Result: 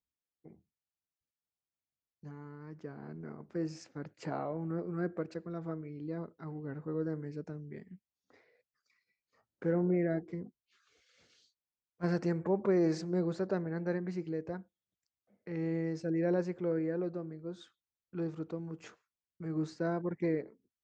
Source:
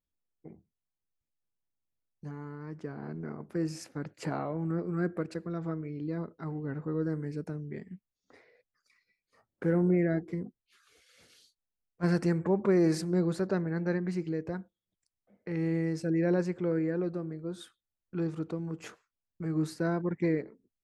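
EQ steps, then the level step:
high-pass filter 42 Hz
Butterworth low-pass 7,300 Hz 48 dB per octave
dynamic equaliser 600 Hz, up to +5 dB, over −40 dBFS, Q 0.9
−6.0 dB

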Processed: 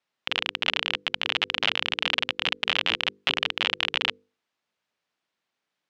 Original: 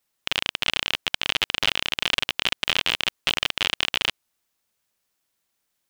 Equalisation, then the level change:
band-pass filter 140–3,700 Hz
mains-hum notches 50/100/150/200/250/300/350/400/450/500 Hz
0.0 dB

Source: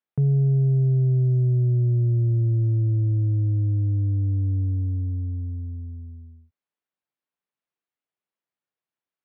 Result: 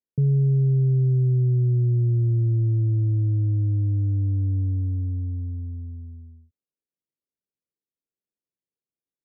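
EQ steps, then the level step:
Butterworth low-pass 530 Hz 36 dB per octave
0.0 dB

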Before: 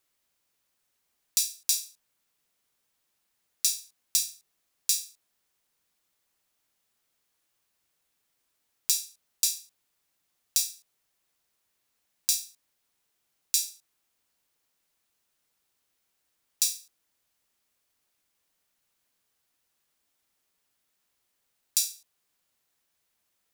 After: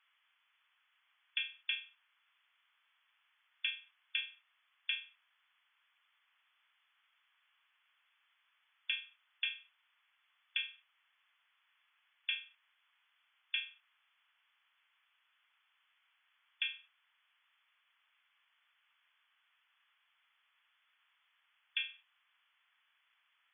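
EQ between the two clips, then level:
high-pass filter 1,100 Hz 24 dB per octave
linear-phase brick-wall low-pass 3,500 Hz
+10.0 dB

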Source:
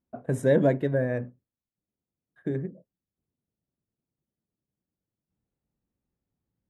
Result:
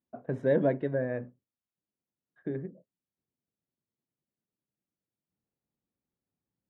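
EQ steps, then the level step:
high-pass filter 190 Hz 6 dB per octave
high-frequency loss of the air 270 metres
−2.5 dB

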